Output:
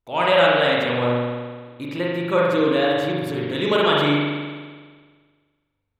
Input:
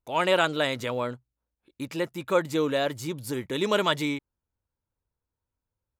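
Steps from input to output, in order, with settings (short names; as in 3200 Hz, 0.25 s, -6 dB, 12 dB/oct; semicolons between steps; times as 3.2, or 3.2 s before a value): resonant high shelf 4700 Hz -7 dB, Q 1.5; spring tank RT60 1.6 s, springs 41 ms, chirp 30 ms, DRR -4.5 dB; gain +1 dB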